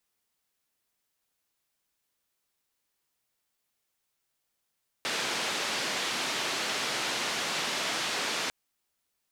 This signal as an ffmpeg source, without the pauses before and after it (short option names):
-f lavfi -i "anoisesrc=c=white:d=3.45:r=44100:seed=1,highpass=f=200,lowpass=f=4500,volume=-19.9dB"